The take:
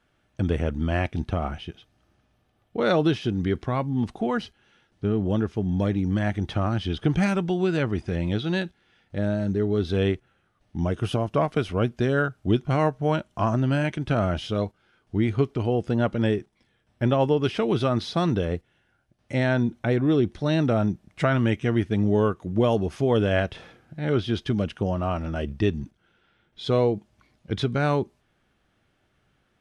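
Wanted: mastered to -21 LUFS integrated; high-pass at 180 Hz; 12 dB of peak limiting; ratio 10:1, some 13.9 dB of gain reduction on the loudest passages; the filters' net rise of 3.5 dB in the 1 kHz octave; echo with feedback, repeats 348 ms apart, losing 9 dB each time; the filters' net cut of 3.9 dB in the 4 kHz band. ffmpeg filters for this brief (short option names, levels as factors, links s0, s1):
-af "highpass=180,equalizer=f=1000:t=o:g=5,equalizer=f=4000:t=o:g=-5.5,acompressor=threshold=0.0316:ratio=10,alimiter=level_in=1.5:limit=0.0631:level=0:latency=1,volume=0.668,aecho=1:1:348|696|1044|1392:0.355|0.124|0.0435|0.0152,volume=7.94"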